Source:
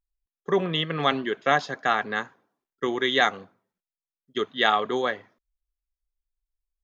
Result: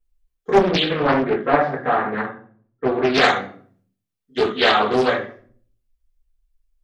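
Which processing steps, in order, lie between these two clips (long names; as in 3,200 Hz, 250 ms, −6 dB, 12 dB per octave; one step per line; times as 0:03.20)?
0:00.99–0:03.14: low-pass filter 1,400 Hz 12 dB per octave
rectangular room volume 44 cubic metres, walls mixed, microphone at 2.1 metres
highs frequency-modulated by the lows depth 0.61 ms
level −4 dB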